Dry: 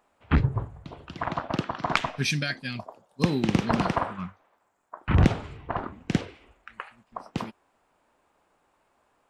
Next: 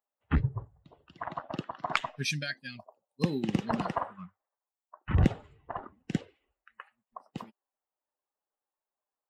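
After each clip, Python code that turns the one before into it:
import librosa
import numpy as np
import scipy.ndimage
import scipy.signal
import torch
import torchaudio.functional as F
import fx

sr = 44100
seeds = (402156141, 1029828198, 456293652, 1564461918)

y = fx.bin_expand(x, sr, power=1.5)
y = y * librosa.db_to_amplitude(-3.0)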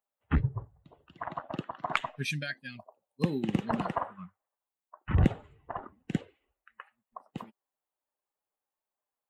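y = fx.peak_eq(x, sr, hz=5200.0, db=-10.0, octaves=0.6)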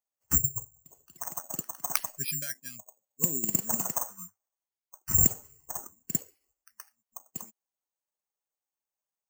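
y = (np.kron(scipy.signal.resample_poly(x, 1, 6), np.eye(6)[0]) * 6)[:len(x)]
y = y * librosa.db_to_amplitude(-7.0)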